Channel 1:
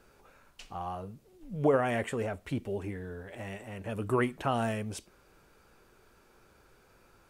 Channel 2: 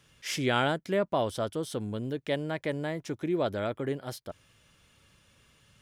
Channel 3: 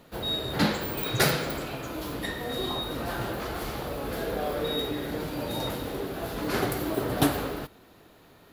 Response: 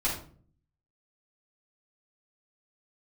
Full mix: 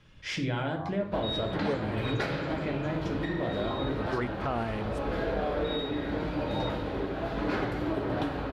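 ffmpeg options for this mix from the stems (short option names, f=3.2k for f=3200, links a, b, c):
-filter_complex "[0:a]dynaudnorm=f=190:g=9:m=8dB,afwtdn=0.0178,volume=-5dB[a];[1:a]lowpass=4k,lowshelf=f=270:g=7.5,acompressor=threshold=-30dB:ratio=6,volume=-2dB,asplit=3[b][c][d];[c]volume=-7dB[e];[2:a]lowpass=3k,adelay=1000,volume=-1dB,asplit=2[f][g];[g]volume=-13dB[h];[d]apad=whole_len=321489[i];[a][i]sidechaincompress=threshold=-41dB:ratio=8:attack=5.6:release=123[j];[3:a]atrim=start_sample=2205[k];[e][h]amix=inputs=2:normalize=0[l];[l][k]afir=irnorm=-1:irlink=0[m];[j][b][f][m]amix=inputs=4:normalize=0,alimiter=limit=-20dB:level=0:latency=1:release=384"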